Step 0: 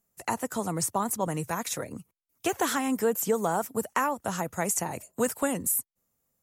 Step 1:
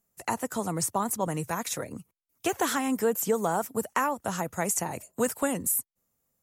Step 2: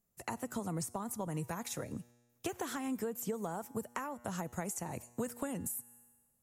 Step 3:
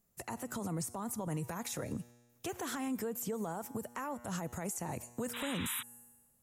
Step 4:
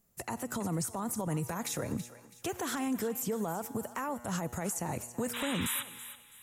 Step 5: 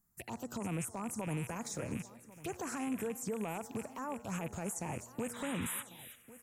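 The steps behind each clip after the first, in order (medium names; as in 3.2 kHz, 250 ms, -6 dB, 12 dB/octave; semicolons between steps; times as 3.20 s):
no audible change
feedback comb 120 Hz, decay 1.3 s, harmonics all, mix 40%; compression, threshold -35 dBFS, peak gain reduction 10 dB; bass shelf 280 Hz +7.5 dB; trim -2 dB
peak limiter -34.5 dBFS, peak gain reduction 11 dB; painted sound noise, 5.33–5.83 s, 900–4000 Hz -48 dBFS; trim +5 dB
thinning echo 328 ms, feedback 36%, high-pass 840 Hz, level -12.5 dB; trim +4 dB
rattle on loud lows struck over -45 dBFS, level -30 dBFS; touch-sensitive phaser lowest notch 520 Hz, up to 4.7 kHz, full sweep at -30 dBFS; delay 1097 ms -18 dB; trim -4 dB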